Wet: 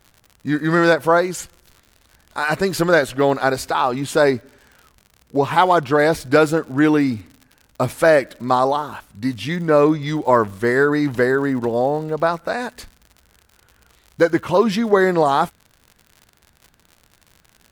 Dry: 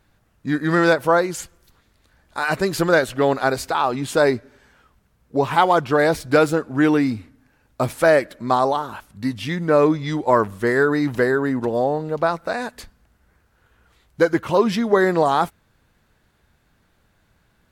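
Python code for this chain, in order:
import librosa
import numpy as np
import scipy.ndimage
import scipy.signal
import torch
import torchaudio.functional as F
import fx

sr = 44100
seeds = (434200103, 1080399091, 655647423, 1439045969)

y = fx.dmg_crackle(x, sr, seeds[0], per_s=83.0, level_db=-35.0)
y = y * 10.0 ** (1.5 / 20.0)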